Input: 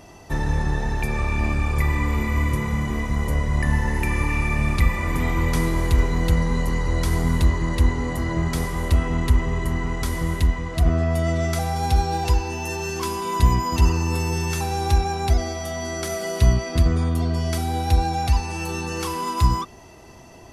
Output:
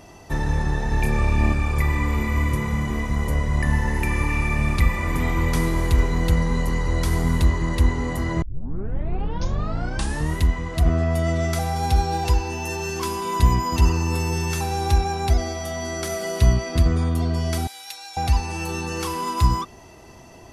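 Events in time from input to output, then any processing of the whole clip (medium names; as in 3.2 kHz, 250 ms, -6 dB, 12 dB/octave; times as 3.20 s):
0.89–1.53 s: doubling 27 ms -4 dB
8.42 s: tape start 1.97 s
17.67–18.17 s: Bessel high-pass 2.7 kHz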